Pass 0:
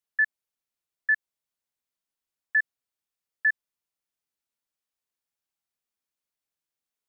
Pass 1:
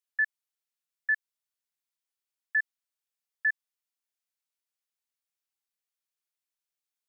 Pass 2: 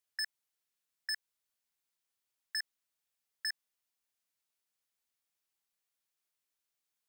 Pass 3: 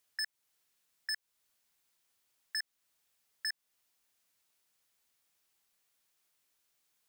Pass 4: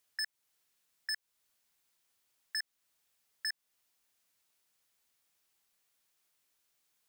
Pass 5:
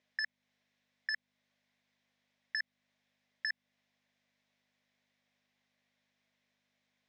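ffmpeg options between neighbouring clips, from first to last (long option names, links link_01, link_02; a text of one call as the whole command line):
ffmpeg -i in.wav -af "highpass=frequency=1400:poles=1,volume=-1.5dB" out.wav
ffmpeg -i in.wav -filter_complex "[0:a]asplit=2[link_01][link_02];[link_02]alimiter=level_in=7dB:limit=-24dB:level=0:latency=1:release=12,volume=-7dB,volume=-1.5dB[link_03];[link_01][link_03]amix=inputs=2:normalize=0,aeval=exprs='0.0562*(abs(mod(val(0)/0.0562+3,4)-2)-1)':channel_layout=same,volume=-2.5dB" out.wav
ffmpeg -i in.wav -af "alimiter=level_in=13dB:limit=-24dB:level=0:latency=1:release=285,volume=-13dB,volume=9.5dB" out.wav
ffmpeg -i in.wav -af anull out.wav
ffmpeg -i in.wav -af "aeval=exprs='val(0)+0.000398*(sin(2*PI*50*n/s)+sin(2*PI*2*50*n/s)/2+sin(2*PI*3*50*n/s)/3+sin(2*PI*4*50*n/s)/4+sin(2*PI*5*50*n/s)/5)':channel_layout=same,highpass=500,equalizer=frequency=600:width_type=q:width=4:gain=6,equalizer=frequency=890:width_type=q:width=4:gain=-4,equalizer=frequency=1300:width_type=q:width=4:gain=-9,equalizer=frequency=2000:width_type=q:width=4:gain=4,equalizer=frequency=2900:width_type=q:width=4:gain=-5,equalizer=frequency=4500:width_type=q:width=4:gain=-7,lowpass=frequency=4600:width=0.5412,lowpass=frequency=4600:width=1.3066,volume=4.5dB" out.wav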